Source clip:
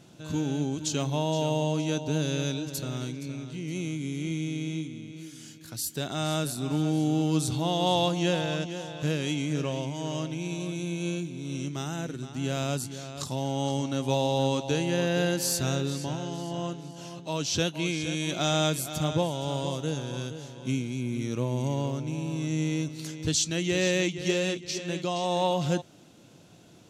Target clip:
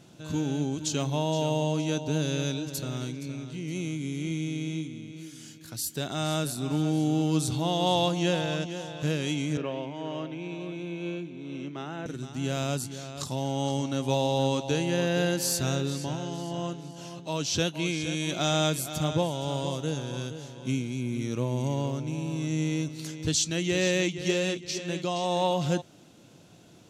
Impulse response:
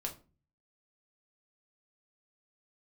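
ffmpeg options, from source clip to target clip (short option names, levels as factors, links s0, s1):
-filter_complex "[0:a]asettb=1/sr,asplit=3[s0][s1][s2];[s0]atrim=end=9.574[s3];[s1]atrim=start=9.57:end=12.06,asetpts=PTS-STARTPTS,afade=t=in:d=0.004:c=qsin,afade=t=out:st=2.486:d=0.004:c=qsin,acrossover=split=200 3300:gain=0.224 1 0.0794[s4][s5][s6];[s4][s5][s6]amix=inputs=3:normalize=0[s7];[s2]atrim=start=12.056[s8];[s3][s7]acrossfade=d=0.004:c1=hsin:c2=qsin[s9];[s9][s8]acrossfade=d=0.004:c1=qsin:c2=hsin"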